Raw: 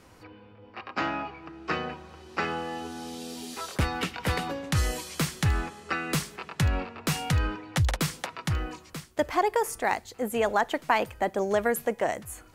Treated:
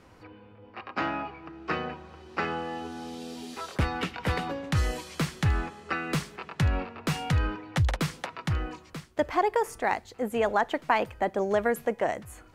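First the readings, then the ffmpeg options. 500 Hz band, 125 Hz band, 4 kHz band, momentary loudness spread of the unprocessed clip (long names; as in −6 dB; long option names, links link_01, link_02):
0.0 dB, 0.0 dB, −3.0 dB, 12 LU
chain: -af "highshelf=frequency=5600:gain=-11"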